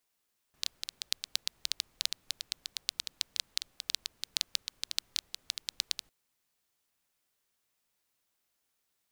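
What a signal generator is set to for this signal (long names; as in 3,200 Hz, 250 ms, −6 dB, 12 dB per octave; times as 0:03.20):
rain-like ticks over hiss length 5.55 s, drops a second 8.8, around 4,100 Hz, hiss −29.5 dB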